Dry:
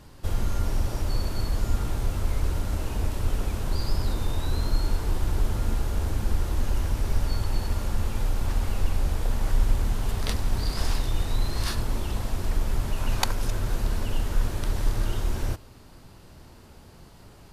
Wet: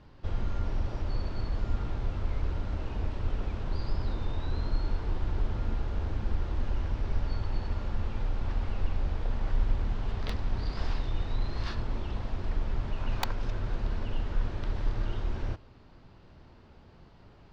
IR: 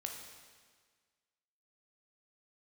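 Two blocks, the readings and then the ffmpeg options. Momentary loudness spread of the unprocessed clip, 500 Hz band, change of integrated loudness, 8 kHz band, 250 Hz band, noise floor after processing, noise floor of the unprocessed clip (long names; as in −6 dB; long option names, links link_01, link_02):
2 LU, −5.0 dB, −5.5 dB, −19.5 dB, −5.0 dB, −55 dBFS, −49 dBFS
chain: -filter_complex "[0:a]equalizer=frequency=10000:width_type=o:width=1.6:gain=-9.5,acrossover=split=5800[link_01][link_02];[link_02]acrusher=bits=4:mix=0:aa=0.000001[link_03];[link_01][link_03]amix=inputs=2:normalize=0,volume=-5dB"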